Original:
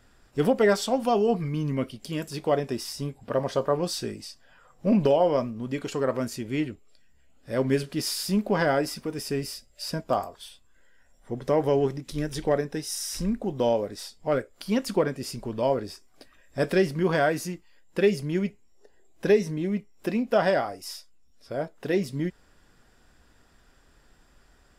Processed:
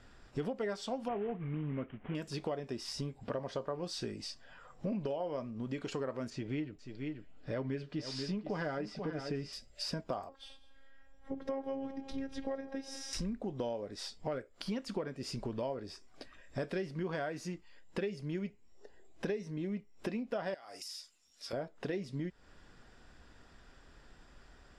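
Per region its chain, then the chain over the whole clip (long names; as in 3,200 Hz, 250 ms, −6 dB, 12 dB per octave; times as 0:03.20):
0:01.08–0:02.15: variable-slope delta modulation 16 kbit/s + low-pass filter 2,300 Hz
0:06.30–0:09.53: high-frequency loss of the air 100 metres + comb filter 6.6 ms, depth 37% + single-tap delay 486 ms −12.5 dB
0:10.29–0:13.13: high-shelf EQ 4,300 Hz −11.5 dB + phases set to zero 270 Hz + echo machine with several playback heads 69 ms, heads second and third, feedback 41%, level −21 dB
0:20.54–0:21.53: spectral tilt +4.5 dB per octave + downward compressor 20 to 1, threshold −38 dBFS
whole clip: low-pass filter 6,100 Hz 12 dB per octave; downward compressor 5 to 1, threshold −37 dBFS; level +1 dB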